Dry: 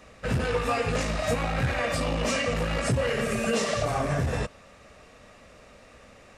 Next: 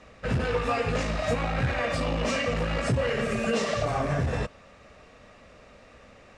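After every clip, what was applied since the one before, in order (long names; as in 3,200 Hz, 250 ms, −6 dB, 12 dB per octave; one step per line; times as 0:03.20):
high-frequency loss of the air 64 metres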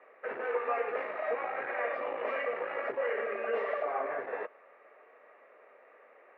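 elliptic band-pass filter 390–2,100 Hz, stop band 70 dB
level −3.5 dB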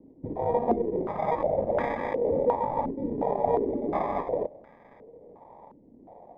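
decimation without filtering 31×
low-pass on a step sequencer 2.8 Hz 290–1,500 Hz
level +3 dB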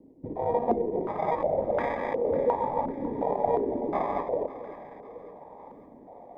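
reversed playback
upward compression, threshold −42 dBFS
reversed playback
low-shelf EQ 240 Hz −4 dB
delay that swaps between a low-pass and a high-pass 275 ms, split 820 Hz, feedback 71%, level −12 dB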